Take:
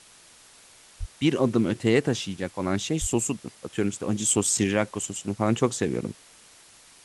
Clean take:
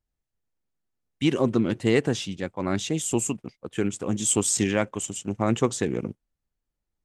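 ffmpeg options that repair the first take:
-filter_complex "[0:a]asplit=3[s0][s1][s2];[s0]afade=t=out:st=0.99:d=0.02[s3];[s1]highpass=f=140:w=0.5412,highpass=f=140:w=1.3066,afade=t=in:st=0.99:d=0.02,afade=t=out:st=1.11:d=0.02[s4];[s2]afade=t=in:st=1.11:d=0.02[s5];[s3][s4][s5]amix=inputs=3:normalize=0,asplit=3[s6][s7][s8];[s6]afade=t=out:st=3:d=0.02[s9];[s7]highpass=f=140:w=0.5412,highpass=f=140:w=1.3066,afade=t=in:st=3:d=0.02,afade=t=out:st=3.12:d=0.02[s10];[s8]afade=t=in:st=3.12:d=0.02[s11];[s9][s10][s11]amix=inputs=3:normalize=0,afwtdn=0.0032"

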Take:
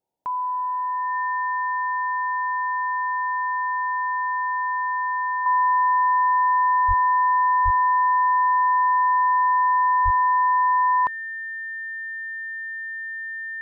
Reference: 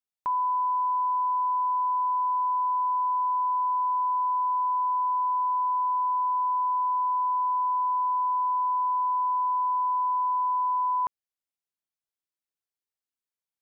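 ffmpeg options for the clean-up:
-filter_complex "[0:a]bandreject=f=1800:w=30,asplit=3[s0][s1][s2];[s0]afade=t=out:st=6.87:d=0.02[s3];[s1]highpass=f=140:w=0.5412,highpass=f=140:w=1.3066,afade=t=in:st=6.87:d=0.02,afade=t=out:st=6.99:d=0.02[s4];[s2]afade=t=in:st=6.99:d=0.02[s5];[s3][s4][s5]amix=inputs=3:normalize=0,asplit=3[s6][s7][s8];[s6]afade=t=out:st=7.64:d=0.02[s9];[s7]highpass=f=140:w=0.5412,highpass=f=140:w=1.3066,afade=t=in:st=7.64:d=0.02,afade=t=out:st=7.76:d=0.02[s10];[s8]afade=t=in:st=7.76:d=0.02[s11];[s9][s10][s11]amix=inputs=3:normalize=0,asplit=3[s12][s13][s14];[s12]afade=t=out:st=10.04:d=0.02[s15];[s13]highpass=f=140:w=0.5412,highpass=f=140:w=1.3066,afade=t=in:st=10.04:d=0.02,afade=t=out:st=10.16:d=0.02[s16];[s14]afade=t=in:st=10.16:d=0.02[s17];[s15][s16][s17]amix=inputs=3:normalize=0,agate=range=0.0891:threshold=0.0631,asetnsamples=n=441:p=0,asendcmd='5.46 volume volume -6.5dB',volume=1"

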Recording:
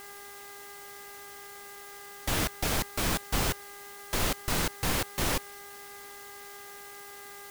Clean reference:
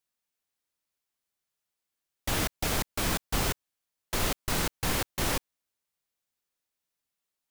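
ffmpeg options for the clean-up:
-af "bandreject=f=403.6:t=h:w=4,bandreject=f=807.2:t=h:w=4,bandreject=f=1210.8:t=h:w=4,bandreject=f=1614.4:t=h:w=4,bandreject=f=2018:t=h:w=4,afwtdn=0.0035"

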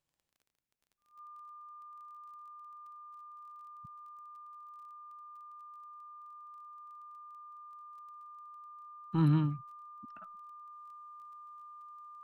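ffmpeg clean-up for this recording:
-af "adeclick=t=4,bandreject=f=1200:w=30,agate=range=0.0891:threshold=0.00708"

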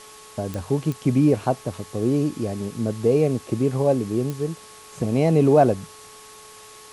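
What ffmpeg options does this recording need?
-af "adeclick=t=4,bandreject=f=428.3:t=h:w=4,bandreject=f=856.6:t=h:w=4,bandreject=f=1284.9:t=h:w=4,bandreject=f=1713.2:t=h:w=4,bandreject=f=1100:w=30,afwtdn=0.0063"

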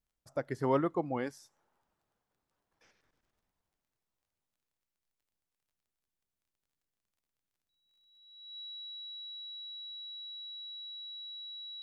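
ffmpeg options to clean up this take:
-af "adeclick=t=4,bandreject=f=3900:w=30"

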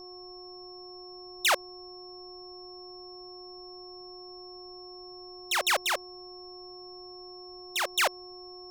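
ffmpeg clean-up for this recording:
-af "bandreject=f=362.4:t=h:w=4,bandreject=f=724.8:t=h:w=4,bandreject=f=1087.2:t=h:w=4,bandreject=f=5400:w=30,agate=range=0.0891:threshold=0.0126"

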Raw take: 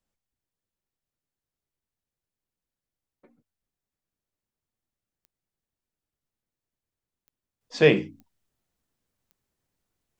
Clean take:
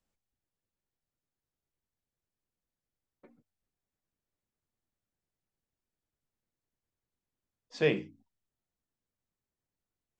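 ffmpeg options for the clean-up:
-af "adeclick=t=4,asetnsamples=n=441:p=0,asendcmd='7.61 volume volume -9.5dB',volume=1"

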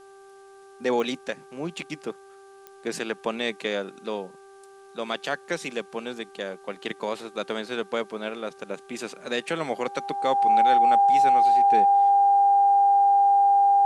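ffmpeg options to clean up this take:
-af "adeclick=t=4,bandreject=f=391.9:t=h:w=4,bandreject=f=783.8:t=h:w=4,bandreject=f=1175.7:t=h:w=4,bandreject=f=1567.6:t=h:w=4,bandreject=f=800:w=30,agate=range=0.0891:threshold=0.00891"

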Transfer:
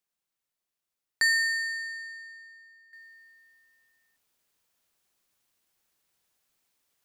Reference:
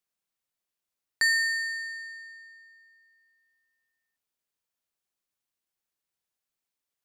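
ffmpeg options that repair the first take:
-af "asetnsamples=n=441:p=0,asendcmd='2.93 volume volume -11.5dB',volume=1"

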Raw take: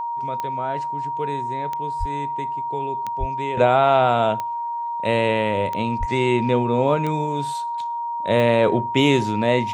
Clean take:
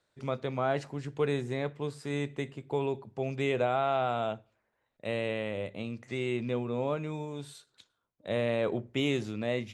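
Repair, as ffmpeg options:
-filter_complex "[0:a]adeclick=t=4,bandreject=f=940:w=30,asplit=3[s0][s1][s2];[s0]afade=t=out:st=1.99:d=0.02[s3];[s1]highpass=f=140:w=0.5412,highpass=f=140:w=1.3066,afade=t=in:st=1.99:d=0.02,afade=t=out:st=2.11:d=0.02[s4];[s2]afade=t=in:st=2.11:d=0.02[s5];[s3][s4][s5]amix=inputs=3:normalize=0,asplit=3[s6][s7][s8];[s6]afade=t=out:st=3.19:d=0.02[s9];[s7]highpass=f=140:w=0.5412,highpass=f=140:w=1.3066,afade=t=in:st=3.19:d=0.02,afade=t=out:st=3.31:d=0.02[s10];[s8]afade=t=in:st=3.31:d=0.02[s11];[s9][s10][s11]amix=inputs=3:normalize=0,asplit=3[s12][s13][s14];[s12]afade=t=out:st=5.99:d=0.02[s15];[s13]highpass=f=140:w=0.5412,highpass=f=140:w=1.3066,afade=t=in:st=5.99:d=0.02,afade=t=out:st=6.11:d=0.02[s16];[s14]afade=t=in:st=6.11:d=0.02[s17];[s15][s16][s17]amix=inputs=3:normalize=0,asetnsamples=n=441:p=0,asendcmd='3.57 volume volume -12dB',volume=1"

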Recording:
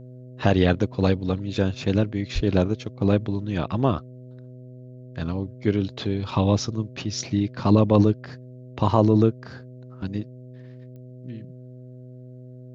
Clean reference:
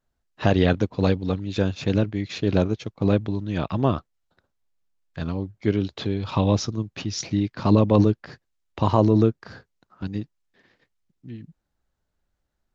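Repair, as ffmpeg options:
-filter_complex "[0:a]adeclick=t=4,bandreject=f=126:t=h:w=4,bandreject=f=252:t=h:w=4,bandreject=f=378:t=h:w=4,bandreject=f=504:t=h:w=4,bandreject=f=630:t=h:w=4,asplit=3[s0][s1][s2];[s0]afade=t=out:st=2.34:d=0.02[s3];[s1]highpass=f=140:w=0.5412,highpass=f=140:w=1.3066,afade=t=in:st=2.34:d=0.02,afade=t=out:st=2.46:d=0.02[s4];[s2]afade=t=in:st=2.46:d=0.02[s5];[s3][s4][s5]amix=inputs=3:normalize=0"

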